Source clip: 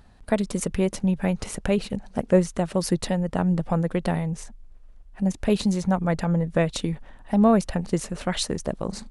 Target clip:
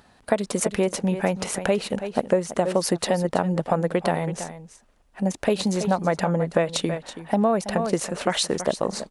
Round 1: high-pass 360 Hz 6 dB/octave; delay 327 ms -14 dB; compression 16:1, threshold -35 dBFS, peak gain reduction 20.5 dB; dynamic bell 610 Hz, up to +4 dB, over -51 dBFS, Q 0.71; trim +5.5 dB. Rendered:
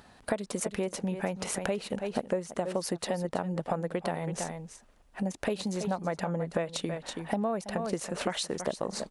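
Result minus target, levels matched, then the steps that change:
compression: peak gain reduction +10 dB
change: compression 16:1, threshold -24.5 dBFS, peak gain reduction 10.5 dB

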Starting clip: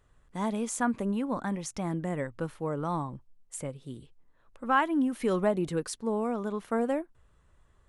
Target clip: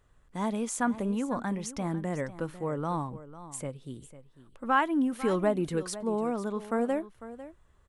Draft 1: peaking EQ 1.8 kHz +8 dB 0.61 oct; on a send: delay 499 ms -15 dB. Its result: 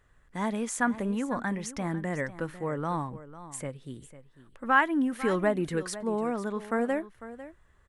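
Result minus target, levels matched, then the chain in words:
2 kHz band +5.0 dB
on a send: delay 499 ms -15 dB

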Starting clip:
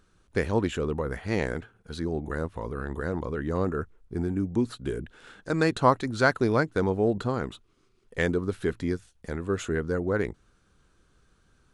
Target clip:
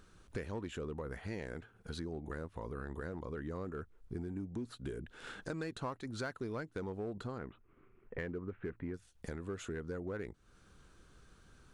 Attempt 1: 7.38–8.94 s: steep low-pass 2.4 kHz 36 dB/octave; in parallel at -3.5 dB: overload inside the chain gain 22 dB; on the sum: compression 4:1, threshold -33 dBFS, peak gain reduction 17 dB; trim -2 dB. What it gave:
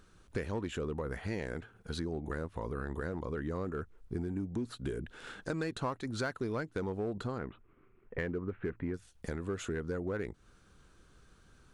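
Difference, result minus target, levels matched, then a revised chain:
compression: peak gain reduction -5 dB
7.38–8.94 s: steep low-pass 2.4 kHz 36 dB/octave; in parallel at -3.5 dB: overload inside the chain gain 22 dB; on the sum: compression 4:1, threshold -39.5 dBFS, peak gain reduction 22 dB; trim -2 dB

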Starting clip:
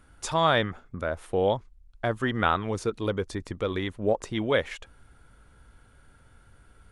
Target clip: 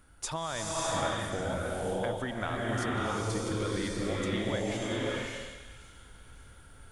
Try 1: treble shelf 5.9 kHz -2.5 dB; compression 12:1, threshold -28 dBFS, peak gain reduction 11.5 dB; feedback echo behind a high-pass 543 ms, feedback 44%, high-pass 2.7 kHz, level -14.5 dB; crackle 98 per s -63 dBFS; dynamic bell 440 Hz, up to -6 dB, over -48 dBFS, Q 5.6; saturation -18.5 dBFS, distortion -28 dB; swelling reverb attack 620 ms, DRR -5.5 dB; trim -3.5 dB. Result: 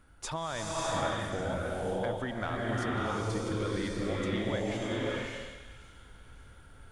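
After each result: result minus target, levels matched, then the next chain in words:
saturation: distortion +20 dB; 8 kHz band -4.0 dB
treble shelf 5.9 kHz -2.5 dB; compression 12:1, threshold -28 dBFS, peak gain reduction 11.5 dB; feedback echo behind a high-pass 543 ms, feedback 44%, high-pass 2.7 kHz, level -14.5 dB; crackle 98 per s -63 dBFS; dynamic bell 440 Hz, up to -6 dB, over -48 dBFS, Q 5.6; saturation -7.5 dBFS, distortion -48 dB; swelling reverb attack 620 ms, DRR -5.5 dB; trim -3.5 dB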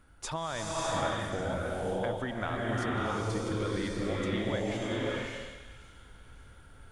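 8 kHz band -4.5 dB
treble shelf 5.9 kHz +7 dB; compression 12:1, threshold -28 dBFS, peak gain reduction 12 dB; feedback echo behind a high-pass 543 ms, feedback 44%, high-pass 2.7 kHz, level -14.5 dB; crackle 98 per s -63 dBFS; dynamic bell 440 Hz, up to -6 dB, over -48 dBFS, Q 5.6; saturation -7.5 dBFS, distortion -48 dB; swelling reverb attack 620 ms, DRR -5.5 dB; trim -3.5 dB

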